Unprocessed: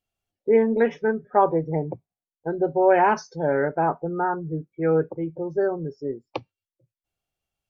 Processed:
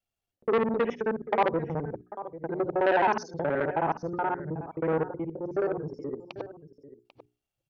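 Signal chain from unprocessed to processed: time reversed locally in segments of 53 ms; hum notches 60/120/180/240/300/360/420 Hz; delay 793 ms -15.5 dB; transformer saturation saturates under 1.1 kHz; trim -3.5 dB

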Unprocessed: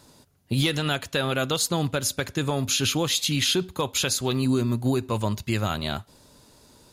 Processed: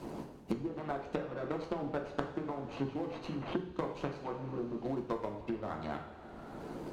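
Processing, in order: median filter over 25 samples; low-pass that closes with the level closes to 610 Hz, closed at -20 dBFS; harmonic-percussive split harmonic -18 dB; in parallel at -4 dB: hard clipper -29.5 dBFS, distortion -9 dB; on the sum: Chebyshev shaper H 3 -11 dB, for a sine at -12.5 dBFS; two-slope reverb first 0.5 s, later 2 s, from -16 dB, DRR 1.5 dB; three bands compressed up and down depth 100%; trim +1 dB

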